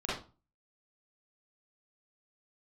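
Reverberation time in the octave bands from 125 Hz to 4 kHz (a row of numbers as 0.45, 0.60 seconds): 0.45, 0.40, 0.35, 0.35, 0.25, 0.25 seconds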